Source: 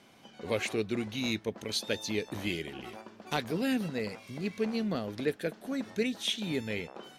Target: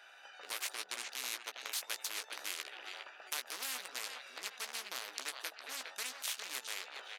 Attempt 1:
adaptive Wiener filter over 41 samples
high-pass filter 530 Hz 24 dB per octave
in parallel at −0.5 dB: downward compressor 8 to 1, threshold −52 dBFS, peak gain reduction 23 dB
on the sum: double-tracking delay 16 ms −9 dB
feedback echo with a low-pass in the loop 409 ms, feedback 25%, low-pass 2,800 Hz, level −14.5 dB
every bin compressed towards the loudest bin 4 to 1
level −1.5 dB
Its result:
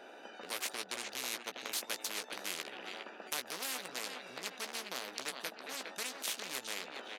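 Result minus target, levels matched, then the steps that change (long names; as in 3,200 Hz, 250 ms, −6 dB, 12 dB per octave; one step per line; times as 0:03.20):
500 Hz band +6.5 dB
change: high-pass filter 1,200 Hz 24 dB per octave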